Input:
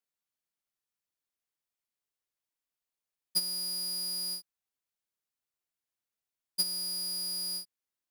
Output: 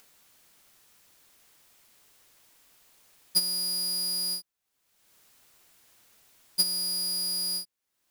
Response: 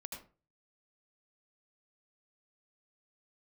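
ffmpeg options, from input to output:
-af "acompressor=mode=upward:threshold=0.00562:ratio=2.5,volume=1.78"

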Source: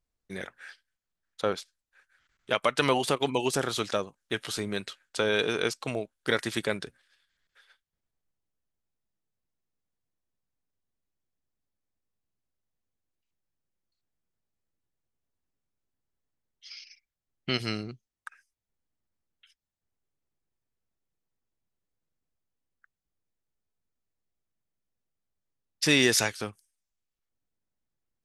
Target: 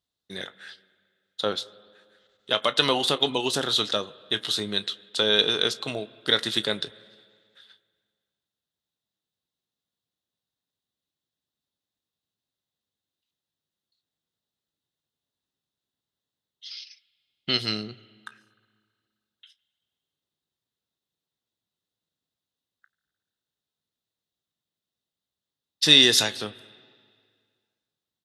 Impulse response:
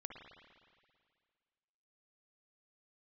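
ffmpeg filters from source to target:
-filter_complex "[0:a]highpass=100,equalizer=f=3700:t=o:w=0.53:g=14.5,bandreject=f=2300:w=8,asplit=2[s0][s1];[s1]adelay=19,volume=0.2[s2];[s0][s2]amix=inputs=2:normalize=0,asplit=2[s3][s4];[1:a]atrim=start_sample=2205,adelay=33[s5];[s4][s5]afir=irnorm=-1:irlink=0,volume=0.237[s6];[s3][s6]amix=inputs=2:normalize=0"

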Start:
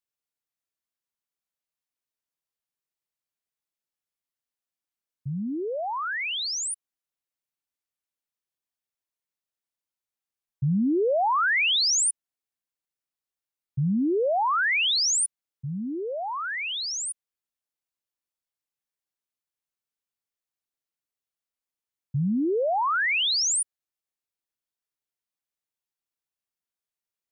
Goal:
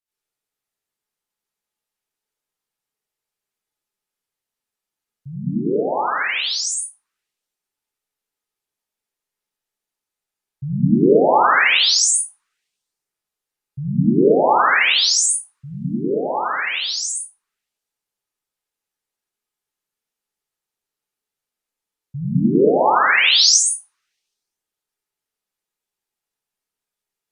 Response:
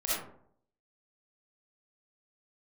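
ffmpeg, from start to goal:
-filter_complex "[0:a]asplit=3[s0][s1][s2];[s0]afade=t=out:st=22.18:d=0.02[s3];[s1]highshelf=f=4300:g=8.5,afade=t=in:st=22.18:d=0.02,afade=t=out:st=23.48:d=0.02[s4];[s2]afade=t=in:st=23.48:d=0.02[s5];[s3][s4][s5]amix=inputs=3:normalize=0[s6];[1:a]atrim=start_sample=2205,asetrate=29106,aresample=44100[s7];[s6][s7]afir=irnorm=-1:irlink=0,volume=0.794"

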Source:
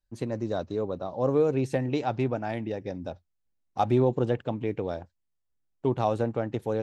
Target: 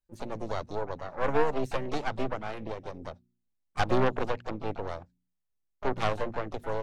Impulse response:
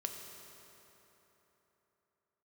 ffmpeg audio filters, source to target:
-filter_complex "[0:a]aeval=exprs='0.282*(cos(1*acos(clip(val(0)/0.282,-1,1)))-cos(1*PI/2))+0.0126*(cos(3*acos(clip(val(0)/0.282,-1,1)))-cos(3*PI/2))+0.1*(cos(6*acos(clip(val(0)/0.282,-1,1)))-cos(6*PI/2))+0.0126*(cos(8*acos(clip(val(0)/0.282,-1,1)))-cos(8*PI/2))':c=same,bandreject=f=59.85:t=h:w=4,bandreject=f=119.7:t=h:w=4,bandreject=f=179.55:t=h:w=4,bandreject=f=239.4:t=h:w=4,asplit=2[s0][s1];[s1]asetrate=66075,aresample=44100,atempo=0.66742,volume=0.316[s2];[s0][s2]amix=inputs=2:normalize=0,volume=0.596"

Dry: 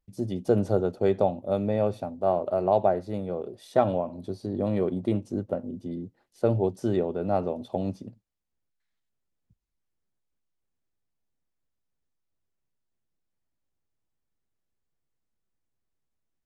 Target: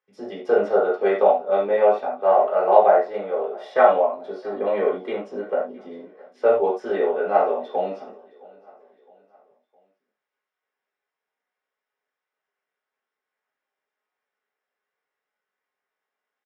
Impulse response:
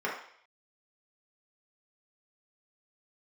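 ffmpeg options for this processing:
-filter_complex "[0:a]highpass=540,lowpass=3700,highshelf=f=2100:g=8,asplit=2[s0][s1];[s1]adelay=19,volume=0.282[s2];[s0][s2]amix=inputs=2:normalize=0,aecho=1:1:663|1326|1989:0.0668|0.0294|0.0129[s3];[1:a]atrim=start_sample=2205,atrim=end_sample=4410[s4];[s3][s4]afir=irnorm=-1:irlink=0,volume=1.12"

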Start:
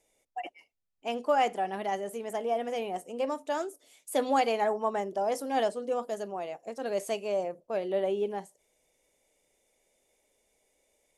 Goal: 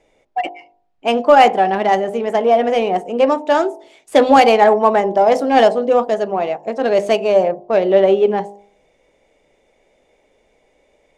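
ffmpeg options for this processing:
-af "bandreject=f=50.58:t=h:w=4,bandreject=f=101.16:t=h:w=4,bandreject=f=151.74:t=h:w=4,bandreject=f=202.32:t=h:w=4,bandreject=f=252.9:t=h:w=4,bandreject=f=303.48:t=h:w=4,bandreject=f=354.06:t=h:w=4,bandreject=f=404.64:t=h:w=4,bandreject=f=455.22:t=h:w=4,bandreject=f=505.8:t=h:w=4,bandreject=f=556.38:t=h:w=4,bandreject=f=606.96:t=h:w=4,bandreject=f=657.54:t=h:w=4,bandreject=f=708.12:t=h:w=4,bandreject=f=758.7:t=h:w=4,bandreject=f=809.28:t=h:w=4,bandreject=f=859.86:t=h:w=4,bandreject=f=910.44:t=h:w=4,bandreject=f=961.02:t=h:w=4,bandreject=f=1011.6:t=h:w=4,bandreject=f=1062.18:t=h:w=4,adynamicsmooth=sensitivity=5:basefreq=3000,apsyclip=8.91,volume=0.841"

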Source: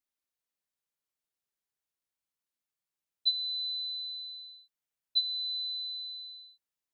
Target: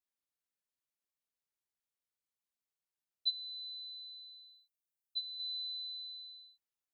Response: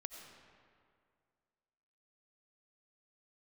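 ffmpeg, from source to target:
-filter_complex "[0:a]asettb=1/sr,asplit=3[s0][s1][s2];[s0]atrim=end=3.304[s3];[s1]atrim=start=3.3:end=5.4,asetpts=PTS-STARTPTS,afade=t=in:d=0.004:c=qsin,afade=t=out:st=2.096:d=0.004:c=qsin,aderivative[s4];[s2]atrim=start=5.396[s5];[s3][s4]acrossfade=d=0.004:c1=hsin:c2=qsin[s6];[s6][s5]acrossfade=d=0.004:c1=qsin:c2=hsin,volume=0.531"

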